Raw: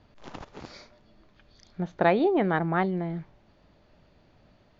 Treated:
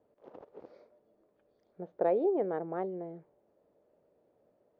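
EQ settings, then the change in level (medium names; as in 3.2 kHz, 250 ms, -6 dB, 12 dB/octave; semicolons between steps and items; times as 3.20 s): band-pass filter 480 Hz, Q 3.2; 0.0 dB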